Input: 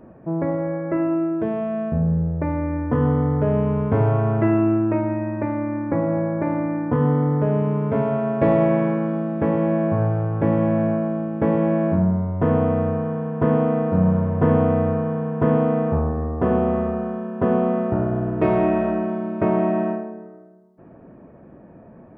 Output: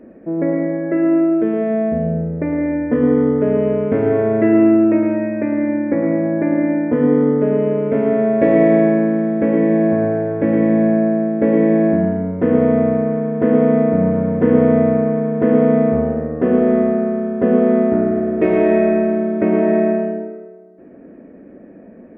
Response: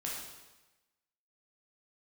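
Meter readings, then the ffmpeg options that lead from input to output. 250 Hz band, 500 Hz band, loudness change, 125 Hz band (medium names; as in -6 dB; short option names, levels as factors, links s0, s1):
+6.5 dB, +6.5 dB, +5.5 dB, -3.0 dB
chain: -filter_complex "[0:a]equalizer=f=125:t=o:w=1:g=-10,equalizer=f=250:t=o:w=1:g=11,equalizer=f=500:t=o:w=1:g=8,equalizer=f=1000:t=o:w=1:g=-8,equalizer=f=2000:t=o:w=1:g=11,asplit=2[s0][s1];[1:a]atrim=start_sample=2205,adelay=109[s2];[s1][s2]afir=irnorm=-1:irlink=0,volume=0.501[s3];[s0][s3]amix=inputs=2:normalize=0,volume=0.668"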